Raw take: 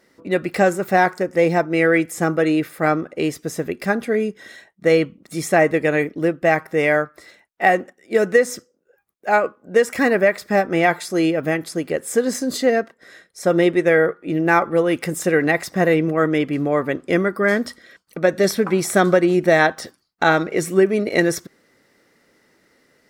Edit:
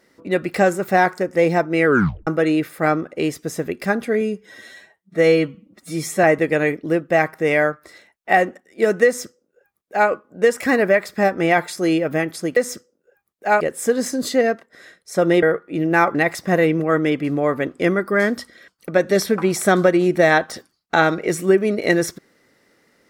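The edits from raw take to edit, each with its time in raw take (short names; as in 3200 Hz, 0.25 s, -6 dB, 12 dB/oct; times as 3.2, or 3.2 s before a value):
1.86 tape stop 0.41 s
4.21–5.56 stretch 1.5×
8.38–9.42 copy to 11.89
13.71–13.97 cut
14.69–15.43 cut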